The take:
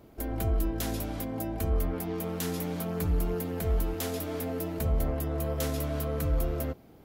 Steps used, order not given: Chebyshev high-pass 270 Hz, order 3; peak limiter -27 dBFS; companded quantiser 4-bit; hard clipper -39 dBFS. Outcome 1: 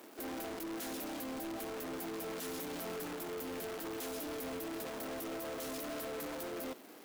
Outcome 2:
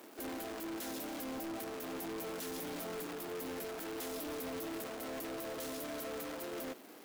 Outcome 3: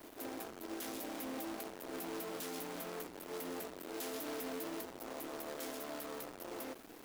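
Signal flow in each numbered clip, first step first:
companded quantiser > Chebyshev high-pass > peak limiter > hard clipper; peak limiter > companded quantiser > Chebyshev high-pass > hard clipper; peak limiter > hard clipper > Chebyshev high-pass > companded quantiser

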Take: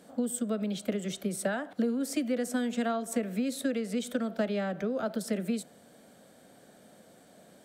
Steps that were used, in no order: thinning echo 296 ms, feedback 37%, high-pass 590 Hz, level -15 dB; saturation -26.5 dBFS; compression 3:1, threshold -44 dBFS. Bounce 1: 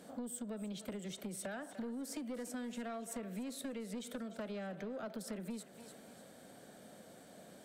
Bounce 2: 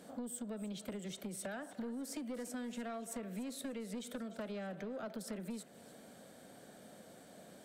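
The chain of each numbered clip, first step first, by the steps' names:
saturation > thinning echo > compression; saturation > compression > thinning echo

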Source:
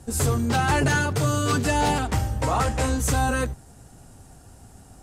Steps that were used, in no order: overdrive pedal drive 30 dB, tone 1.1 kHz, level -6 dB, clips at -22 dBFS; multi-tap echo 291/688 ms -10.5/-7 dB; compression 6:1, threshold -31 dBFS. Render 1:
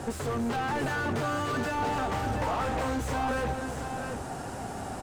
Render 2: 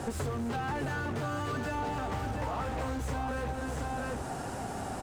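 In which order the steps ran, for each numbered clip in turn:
compression > overdrive pedal > multi-tap echo; overdrive pedal > multi-tap echo > compression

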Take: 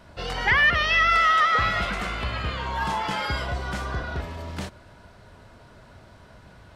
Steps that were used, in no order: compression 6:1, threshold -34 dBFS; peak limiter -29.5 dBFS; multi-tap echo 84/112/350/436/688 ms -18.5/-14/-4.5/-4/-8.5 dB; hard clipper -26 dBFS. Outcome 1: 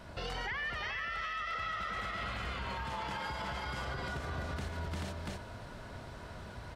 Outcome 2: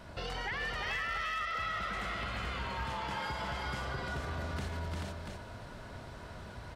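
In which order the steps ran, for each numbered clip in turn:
multi-tap echo > compression > peak limiter > hard clipper; compression > multi-tap echo > hard clipper > peak limiter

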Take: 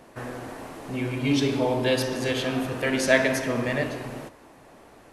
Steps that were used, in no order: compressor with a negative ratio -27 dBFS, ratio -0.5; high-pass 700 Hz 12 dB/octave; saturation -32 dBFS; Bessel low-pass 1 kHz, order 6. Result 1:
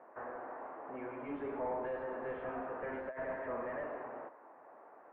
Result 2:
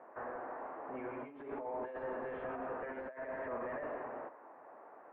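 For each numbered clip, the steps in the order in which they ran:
high-pass > compressor with a negative ratio > saturation > Bessel low-pass; compressor with a negative ratio > high-pass > saturation > Bessel low-pass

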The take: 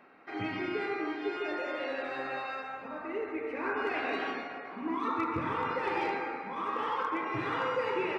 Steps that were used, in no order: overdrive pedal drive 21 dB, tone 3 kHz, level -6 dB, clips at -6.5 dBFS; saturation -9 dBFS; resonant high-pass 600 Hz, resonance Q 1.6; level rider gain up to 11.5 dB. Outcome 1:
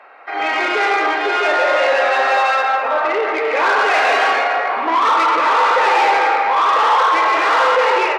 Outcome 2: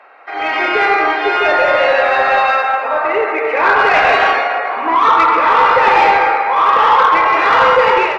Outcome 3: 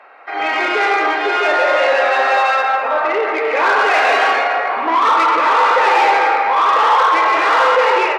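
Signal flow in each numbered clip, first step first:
level rider > overdrive pedal > saturation > resonant high-pass; resonant high-pass > overdrive pedal > saturation > level rider; saturation > level rider > overdrive pedal > resonant high-pass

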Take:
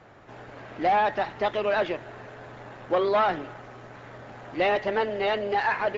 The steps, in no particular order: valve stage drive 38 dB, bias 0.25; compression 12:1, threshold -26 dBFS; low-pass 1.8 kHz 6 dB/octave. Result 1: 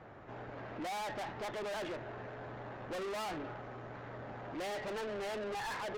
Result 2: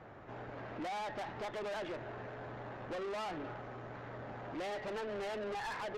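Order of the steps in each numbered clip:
low-pass > valve stage > compression; compression > low-pass > valve stage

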